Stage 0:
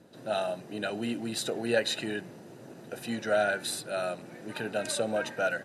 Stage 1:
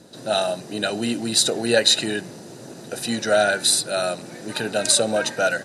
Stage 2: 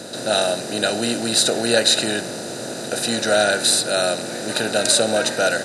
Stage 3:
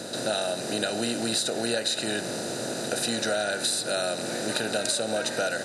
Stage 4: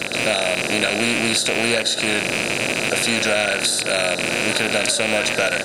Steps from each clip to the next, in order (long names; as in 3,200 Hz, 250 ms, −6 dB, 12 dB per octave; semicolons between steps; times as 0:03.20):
flat-topped bell 6,200 Hz +9 dB; level +8 dB
compressor on every frequency bin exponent 0.6; level −1.5 dB
downward compressor, threshold −22 dBFS, peak gain reduction 10.5 dB; level −2 dB
loose part that buzzes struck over −41 dBFS, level −15 dBFS; level +6.5 dB